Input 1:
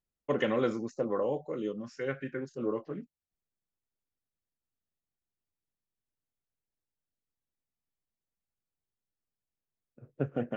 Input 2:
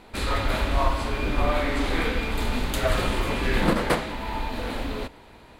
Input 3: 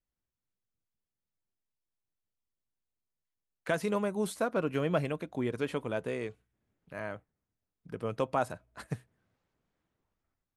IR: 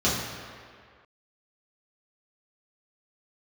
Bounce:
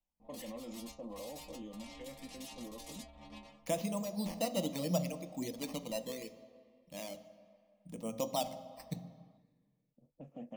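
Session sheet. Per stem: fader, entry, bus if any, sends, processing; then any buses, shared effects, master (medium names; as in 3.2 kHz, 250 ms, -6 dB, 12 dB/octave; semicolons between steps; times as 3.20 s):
-7.0 dB, 0.00 s, bus A, no send, treble shelf 4.7 kHz +8.5 dB
+0.5 dB, 0.20 s, bus A, no send, compressor with a negative ratio -30 dBFS, ratio -0.5; integer overflow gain 29 dB; inharmonic resonator 68 Hz, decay 0.7 s, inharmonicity 0.008; auto duck -13 dB, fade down 0.25 s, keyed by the third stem
0.0 dB, 0.00 s, no bus, send -23.5 dB, reverb removal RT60 1.9 s; peaking EQ 1 kHz -5 dB 0.85 oct; decimation with a swept rate 9×, swing 100% 0.72 Hz
bus A: 0.0 dB, level-controlled noise filter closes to 480 Hz, open at -37.5 dBFS; peak limiter -33.5 dBFS, peak gain reduction 10.5 dB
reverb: on, RT60 2.0 s, pre-delay 3 ms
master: static phaser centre 400 Hz, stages 6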